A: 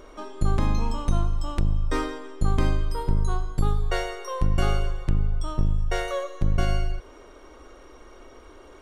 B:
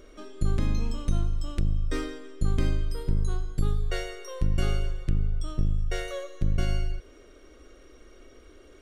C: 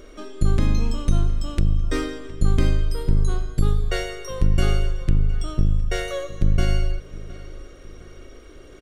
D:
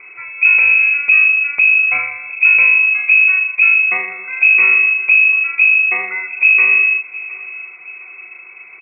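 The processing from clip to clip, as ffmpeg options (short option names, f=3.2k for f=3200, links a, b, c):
-af "equalizer=f=920:t=o:w=0.76:g=-15,volume=-2.5dB"
-filter_complex "[0:a]asplit=2[a][b];[b]adelay=713,lowpass=f=3.6k:p=1,volume=-18dB,asplit=2[c][d];[d]adelay=713,lowpass=f=3.6k:p=1,volume=0.41,asplit=2[e][f];[f]adelay=713,lowpass=f=3.6k:p=1,volume=0.41[g];[a][c][e][g]amix=inputs=4:normalize=0,volume=6.5dB"
-af "acrusher=bits=8:mode=log:mix=0:aa=0.000001,lowpass=f=2.2k:t=q:w=0.5098,lowpass=f=2.2k:t=q:w=0.6013,lowpass=f=2.2k:t=q:w=0.9,lowpass=f=2.2k:t=q:w=2.563,afreqshift=-2600,volume=5.5dB"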